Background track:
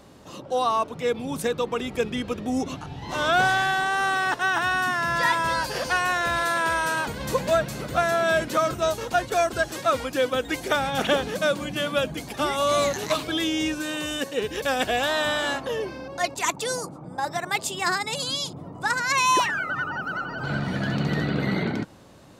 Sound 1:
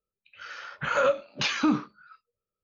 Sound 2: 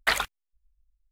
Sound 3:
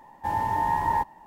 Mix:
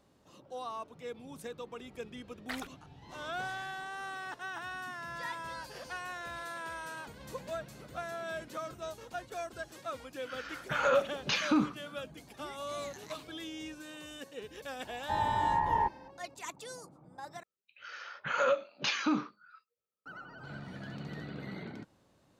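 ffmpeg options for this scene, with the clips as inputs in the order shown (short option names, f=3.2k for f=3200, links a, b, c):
-filter_complex "[1:a]asplit=2[a][b];[0:a]volume=-17.5dB[c];[3:a]lowpass=2.8k[d];[b]highpass=f=240:p=1[e];[c]asplit=2[f][g];[f]atrim=end=17.434[h];[e]atrim=end=2.63,asetpts=PTS-STARTPTS,volume=-4.5dB[i];[g]atrim=start=20.056[j];[2:a]atrim=end=1.11,asetpts=PTS-STARTPTS,volume=-17dB,afade=t=in:d=0.004:c=hsin,afade=t=out:st=1.106:d=0.004:c=hsin,adelay=2420[k];[a]atrim=end=2.63,asetpts=PTS-STARTPTS,volume=-4dB,afade=t=in:d=0.004:c=hsin,afade=t=out:st=2.626:d=0.004:c=hsin,adelay=9880[l];[d]atrim=end=1.26,asetpts=PTS-STARTPTS,volume=-4.5dB,afade=t=in:d=0.004:c=hsin,afade=t=out:st=1.256:d=0.004:c=hsin,adelay=14850[m];[h][i]acrossfade=d=0.004:c1=hsin:c2=hsin[n];[n][j]acrossfade=d=0.004:c1=hsin:c2=hsin[o];[o][k][l][m]amix=inputs=4:normalize=0"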